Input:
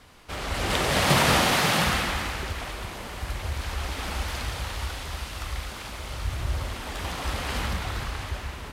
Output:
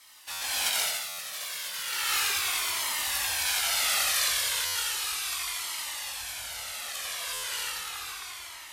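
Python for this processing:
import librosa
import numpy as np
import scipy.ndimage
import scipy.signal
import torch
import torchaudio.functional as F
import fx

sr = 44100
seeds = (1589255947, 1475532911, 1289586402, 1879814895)

p1 = fx.doppler_pass(x, sr, speed_mps=22, closest_m=30.0, pass_at_s=3.35)
p2 = 10.0 ** (-26.0 / 20.0) * np.tanh(p1 / 10.0 ** (-26.0 / 20.0))
p3 = p1 + (p2 * librosa.db_to_amplitude(-5.5))
p4 = fx.low_shelf(p3, sr, hz=390.0, db=-10.5)
p5 = fx.doubler(p4, sr, ms=22.0, db=-6)
p6 = fx.over_compress(p5, sr, threshold_db=-31.0, ratio=-0.5)
p7 = fx.tilt_eq(p6, sr, slope=4.5)
p8 = p7 + fx.echo_single(p7, sr, ms=87, db=-5.5, dry=0)
p9 = fx.buffer_glitch(p8, sr, at_s=(0.31, 1.08, 4.65, 7.33), block=512, repeats=8)
y = fx.comb_cascade(p9, sr, direction='falling', hz=0.35)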